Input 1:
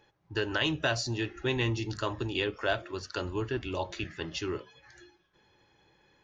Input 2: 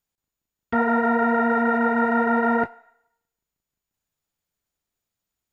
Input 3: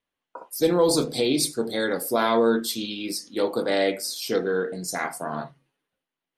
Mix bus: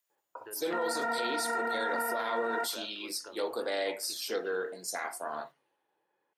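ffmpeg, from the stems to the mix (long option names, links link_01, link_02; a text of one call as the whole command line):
ffmpeg -i stem1.wav -i stem2.wav -i stem3.wav -filter_complex "[0:a]lowpass=1200,acompressor=threshold=-31dB:ratio=6,adelay=100,volume=-8dB[link_01];[1:a]highshelf=frequency=4300:gain=11.5,volume=-7.5dB[link_02];[2:a]volume=-5dB[link_03];[link_01][link_02][link_03]amix=inputs=3:normalize=0,highpass=470,alimiter=limit=-23.5dB:level=0:latency=1:release=25" out.wav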